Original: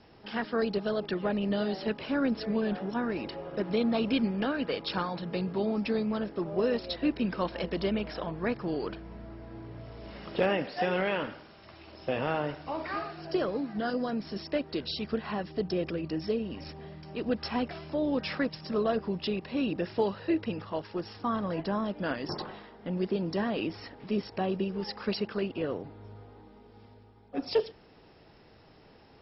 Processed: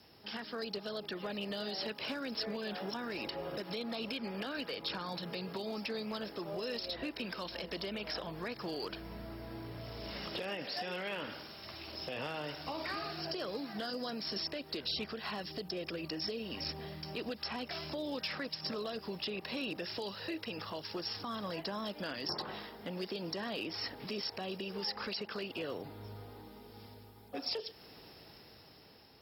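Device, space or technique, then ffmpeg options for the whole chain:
FM broadcast chain: -filter_complex "[0:a]highpass=49,dynaudnorm=f=350:g=7:m=7dB,acrossover=split=440|2600[a][b][c];[a]acompressor=threshold=-37dB:ratio=4[d];[b]acompressor=threshold=-33dB:ratio=4[e];[c]acompressor=threshold=-42dB:ratio=4[f];[d][e][f]amix=inputs=3:normalize=0,aemphasis=mode=production:type=50fm,alimiter=level_in=0.5dB:limit=-24dB:level=0:latency=1:release=98,volume=-0.5dB,asoftclip=type=hard:threshold=-25.5dB,lowpass=f=15k:w=0.5412,lowpass=f=15k:w=1.3066,aemphasis=mode=production:type=50fm,volume=-5.5dB"

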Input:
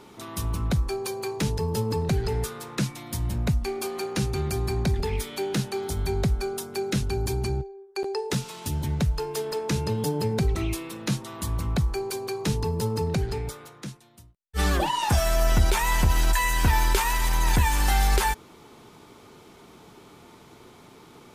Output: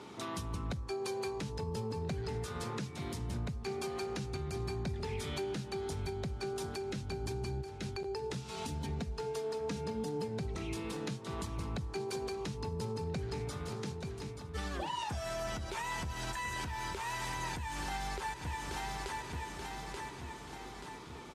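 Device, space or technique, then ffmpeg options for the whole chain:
podcast mastering chain: -filter_complex "[0:a]lowpass=7.8k,bandreject=f=108.5:t=h:w=4,bandreject=f=217:t=h:w=4,bandreject=f=325.5:t=h:w=4,bandreject=f=434:t=h:w=4,bandreject=f=542.5:t=h:w=4,asettb=1/sr,asplit=3[a][b][c];[a]atrim=end=8.514[d];[b]atrim=start=8.51:end=10.28,asetpts=PTS-STARTPTS,afade=t=in:d=0.004:c=qsin,afade=t=out:st=1.766:d=0.004:c=qsin,aecho=1:1:4.3:0.73,atrim=end_sample=78057[e];[c]atrim=start=10.276[f];[d][e]acrossfade=d=0.004:c1=hsin:c2=qsin[g];[g][f]acrossfade=d=0.004:c1=qsin:c2=hsin,highpass=f=65:w=0.5412,highpass=f=65:w=1.3066,aecho=1:1:882|1764|2646|3528|4410:0.211|0.112|0.0594|0.0315|0.0167,deesser=0.7,acompressor=threshold=-33dB:ratio=3,alimiter=level_in=4dB:limit=-24dB:level=0:latency=1:release=307,volume=-4dB" -ar 32000 -c:a libmp3lame -b:a 96k

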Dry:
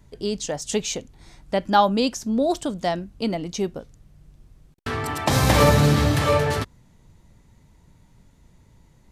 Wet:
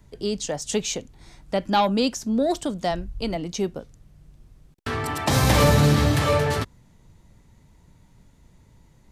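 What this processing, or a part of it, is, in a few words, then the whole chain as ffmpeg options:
one-band saturation: -filter_complex "[0:a]asplit=3[a][b][c];[a]afade=t=out:st=2.9:d=0.02[d];[b]asubboost=boost=11:cutoff=73,afade=t=in:st=2.9:d=0.02,afade=t=out:st=3.34:d=0.02[e];[c]afade=t=in:st=3.34:d=0.02[f];[d][e][f]amix=inputs=3:normalize=0,acrossover=split=270|2600[g][h][i];[h]asoftclip=type=tanh:threshold=-14.5dB[j];[g][j][i]amix=inputs=3:normalize=0"

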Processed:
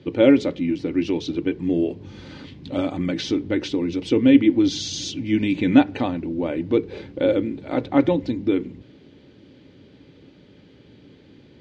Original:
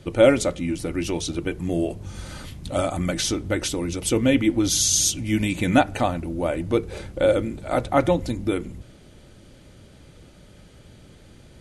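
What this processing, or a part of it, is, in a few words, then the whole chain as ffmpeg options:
guitar cabinet: -af "highpass=110,equalizer=f=280:t=q:w=4:g=9,equalizer=f=420:t=q:w=4:g=5,equalizer=f=670:t=q:w=4:g=-7,equalizer=f=1.3k:t=q:w=4:g=-7,lowpass=f=4.5k:w=0.5412,lowpass=f=4.5k:w=1.3066,volume=-1dB"

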